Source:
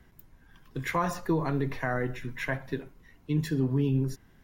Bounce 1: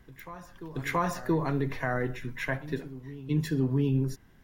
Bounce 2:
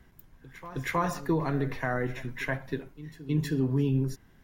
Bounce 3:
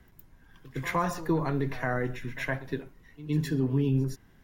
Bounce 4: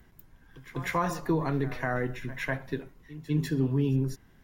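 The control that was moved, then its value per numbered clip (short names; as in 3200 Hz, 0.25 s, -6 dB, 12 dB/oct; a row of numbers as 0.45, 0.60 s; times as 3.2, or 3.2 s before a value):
reverse echo, time: 0.677, 0.317, 0.113, 0.197 s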